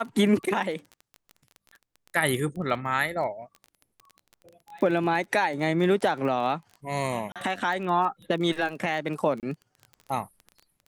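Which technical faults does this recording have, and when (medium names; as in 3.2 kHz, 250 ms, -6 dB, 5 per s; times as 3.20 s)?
crackle 18 per s -34 dBFS
7.32–7.36 s: dropout 37 ms
9.40–9.43 s: dropout 28 ms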